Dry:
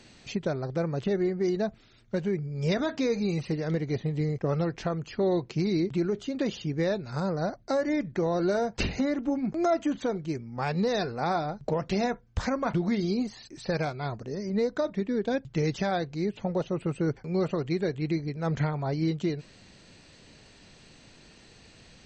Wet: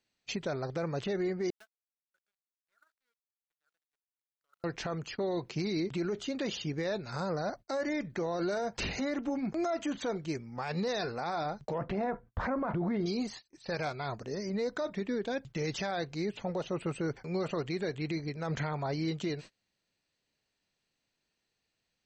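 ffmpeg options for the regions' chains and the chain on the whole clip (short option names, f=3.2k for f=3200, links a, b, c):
-filter_complex "[0:a]asettb=1/sr,asplit=3[a][b][c];[a]atrim=end=1.504[d];[b]atrim=start=1.5:end=4.64,asetpts=PTS-STARTPTS,afade=t=in:d=0.004:c=qsin,afade=t=out:st=3.136:d=0.004:c=qsin,bandpass=f=1.4k:t=q:w=13,aeval=exprs='val(0)*gte(abs(val(0)),0.00251)':c=same[e];[c]atrim=start=4.636[f];[d][e]acrossfade=d=0.004:c1=hsin:c2=qsin[g];[g][f]acrossfade=d=0.004:c1=qsin:c2=hsin,asettb=1/sr,asplit=3[h][i][j];[h]atrim=end=11.784[k];[i]atrim=start=11.78:end=13.06,asetpts=PTS-STARTPTS,afade=t=in:d=0.004:c=qsin,afade=t=out:st=1.276:d=0.004:c=qsin,lowpass=1.3k,acontrast=36[l];[j]atrim=start=13.056[m];[k][l]acrossfade=d=0.004:c1=hsin:c2=qsin[n];[n][m]acrossfade=d=0.004:c1=qsin:c2=hsin,agate=range=-29dB:threshold=-42dB:ratio=16:detection=peak,lowshelf=f=440:g=-8.5,alimiter=level_in=4dB:limit=-24dB:level=0:latency=1:release=23,volume=-4dB,volume=2.5dB"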